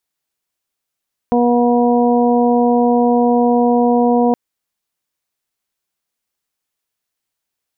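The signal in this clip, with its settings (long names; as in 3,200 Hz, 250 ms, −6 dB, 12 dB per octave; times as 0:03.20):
steady harmonic partials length 3.02 s, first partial 241 Hz, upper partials −2/−4/−10 dB, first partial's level −13 dB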